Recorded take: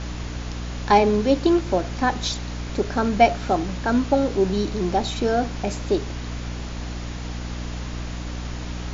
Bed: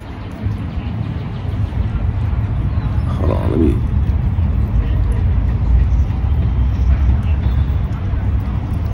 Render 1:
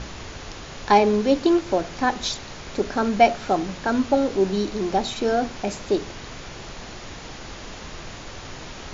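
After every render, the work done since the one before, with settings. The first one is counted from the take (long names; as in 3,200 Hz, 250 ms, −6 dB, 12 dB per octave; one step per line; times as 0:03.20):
mains-hum notches 60/120/180/240/300 Hz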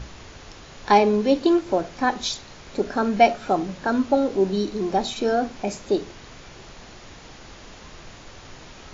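noise reduction from a noise print 6 dB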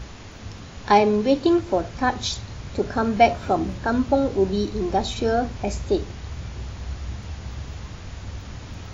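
mix in bed −18.5 dB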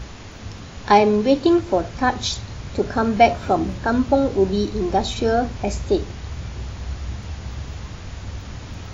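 level +2.5 dB
brickwall limiter −1 dBFS, peak gain reduction 0.5 dB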